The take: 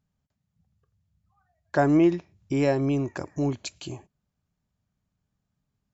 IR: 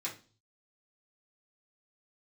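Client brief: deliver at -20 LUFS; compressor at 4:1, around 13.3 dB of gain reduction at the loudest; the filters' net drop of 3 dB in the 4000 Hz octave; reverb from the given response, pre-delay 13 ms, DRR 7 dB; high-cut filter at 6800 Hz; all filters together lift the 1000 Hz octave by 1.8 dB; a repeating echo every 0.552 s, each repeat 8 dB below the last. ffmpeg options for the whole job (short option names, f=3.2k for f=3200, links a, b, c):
-filter_complex "[0:a]lowpass=6.8k,equalizer=f=1k:t=o:g=3,equalizer=f=4k:t=o:g=-3.5,acompressor=threshold=-32dB:ratio=4,aecho=1:1:552|1104|1656|2208|2760:0.398|0.159|0.0637|0.0255|0.0102,asplit=2[a][b];[1:a]atrim=start_sample=2205,adelay=13[c];[b][c]afir=irnorm=-1:irlink=0,volume=-9dB[d];[a][d]amix=inputs=2:normalize=0,volume=15.5dB"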